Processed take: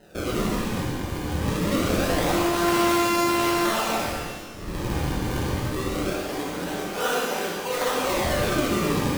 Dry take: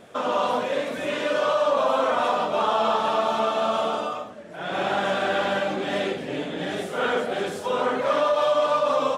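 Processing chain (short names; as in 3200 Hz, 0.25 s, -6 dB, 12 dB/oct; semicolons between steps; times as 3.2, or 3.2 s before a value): 2.27–3.65 sample sorter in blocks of 128 samples; notch 620 Hz, Q 12; decimation with a swept rate 38×, swing 160% 0.24 Hz; shimmer reverb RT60 1.1 s, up +12 st, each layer -8 dB, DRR -3 dB; gain -5 dB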